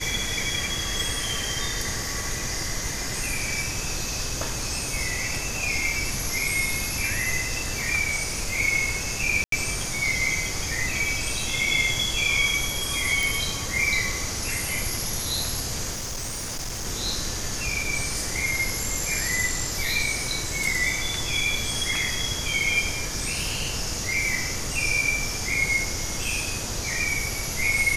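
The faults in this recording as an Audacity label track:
9.440000	9.520000	dropout 83 ms
13.230000	13.230000	pop
15.920000	16.870000	clipped -28 dBFS

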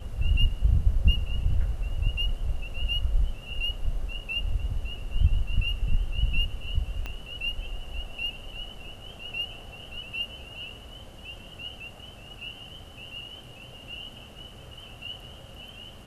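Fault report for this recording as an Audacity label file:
7.060000	7.060000	pop -21 dBFS

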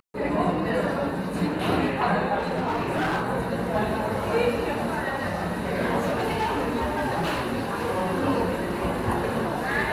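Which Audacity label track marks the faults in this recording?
2.380000	3.250000	clipped -21.5 dBFS
6.000000	8.150000	clipped -21 dBFS

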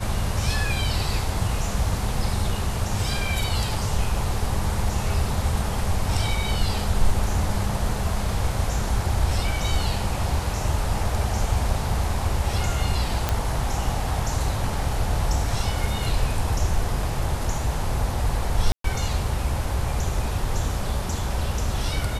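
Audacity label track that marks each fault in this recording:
13.290000	13.290000	pop -7 dBFS
18.720000	18.840000	dropout 123 ms

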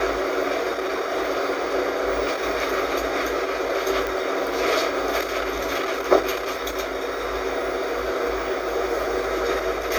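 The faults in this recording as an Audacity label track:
4.070000	4.070000	pop

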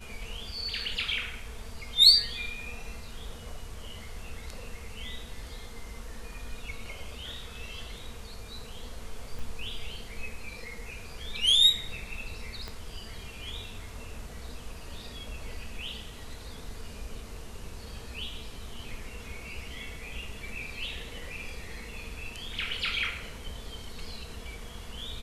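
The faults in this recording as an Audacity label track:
9.390000	9.390000	dropout 2.9 ms
12.680000	12.680000	pop -23 dBFS

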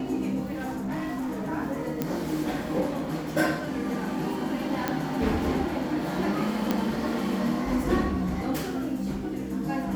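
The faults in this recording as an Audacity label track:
0.510000	1.500000	clipped -27.5 dBFS
2.020000	2.020000	pop -13 dBFS
4.880000	4.880000	pop -12 dBFS
6.710000	6.710000	pop -11 dBFS

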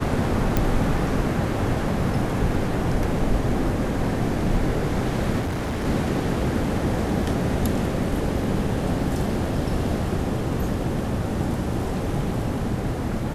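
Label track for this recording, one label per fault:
0.570000	0.570000	pop -7 dBFS
5.400000	5.860000	clipped -23 dBFS

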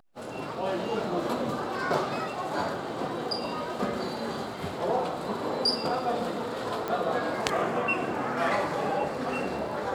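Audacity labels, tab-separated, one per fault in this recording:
6.880000	6.880000	pop -18 dBFS

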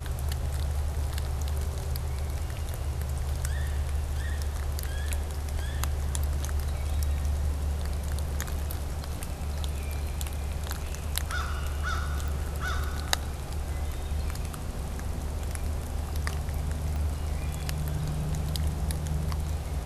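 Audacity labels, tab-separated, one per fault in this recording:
12.280000	12.280000	pop
16.960000	16.960000	pop -23 dBFS

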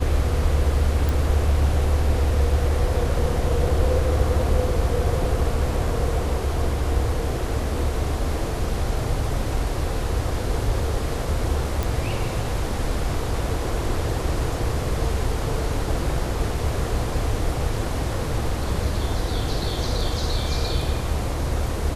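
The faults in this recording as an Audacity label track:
1.090000	1.090000	pop
11.830000	11.830000	pop

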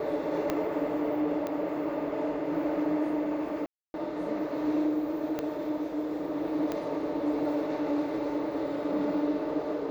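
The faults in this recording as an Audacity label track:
0.500000	0.500000	pop -15 dBFS
1.470000	1.470000	pop -21 dBFS
3.660000	3.940000	dropout 281 ms
5.390000	5.390000	pop -18 dBFS
6.720000	6.720000	pop -19 dBFS

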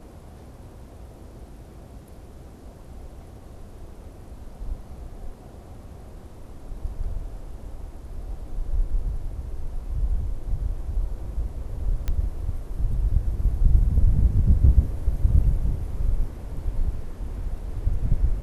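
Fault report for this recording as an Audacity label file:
12.080000	12.080000	pop -15 dBFS

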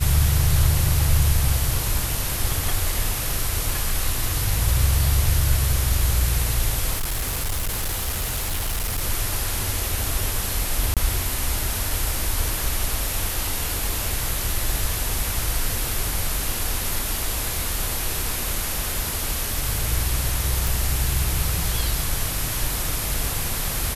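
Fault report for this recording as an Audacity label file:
6.950000	9.020000	clipped -21 dBFS
10.940000	10.970000	dropout 27 ms
20.670000	20.670000	pop

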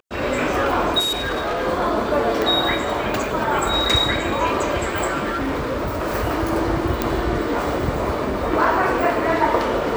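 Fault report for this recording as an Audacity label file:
0.990000	1.670000	clipped -19.5 dBFS
2.420000	2.420000	pop
5.230000	6.160000	clipped -19.5 dBFS
7.020000	7.020000	pop -5 dBFS

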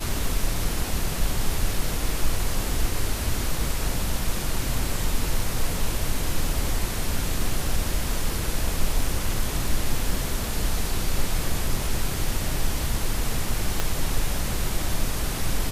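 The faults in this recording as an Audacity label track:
13.800000	13.800000	pop -9 dBFS

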